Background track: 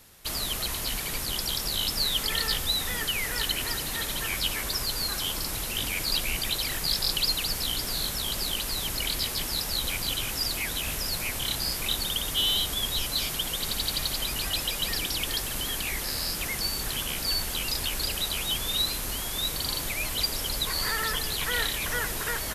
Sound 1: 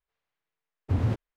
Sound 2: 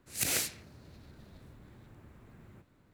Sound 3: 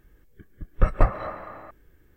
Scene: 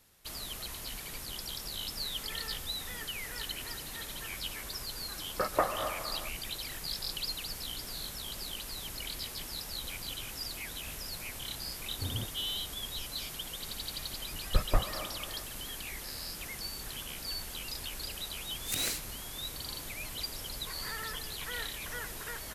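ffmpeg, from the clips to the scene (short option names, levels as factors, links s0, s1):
-filter_complex "[3:a]asplit=2[s0][s1];[0:a]volume=0.299[s2];[s0]highpass=410,lowpass=2200,atrim=end=2.16,asetpts=PTS-STARTPTS,volume=0.891,afade=t=in:d=0.004:c=hsin,afade=t=out:st=2.156:d=0.004:c=hsin,adelay=4580[s3];[1:a]atrim=end=1.36,asetpts=PTS-STARTPTS,volume=0.251,afade=t=in:d=0.004:c=hsin,afade=t=out:st=1.356:d=0.004:c=hsin,adelay=11110[s4];[s1]atrim=end=2.16,asetpts=PTS-STARTPTS,volume=0.376,afade=t=in:d=0.004:c=hsin,afade=t=out:st=2.156:d=0.004:c=hsin,adelay=13730[s5];[2:a]atrim=end=2.93,asetpts=PTS-STARTPTS,volume=0.668,afade=t=in:d=0.004:c=hsin,afade=t=out:st=2.926:d=0.004:c=hsin,adelay=18510[s6];[s2][s3][s4][s5][s6]amix=inputs=5:normalize=0"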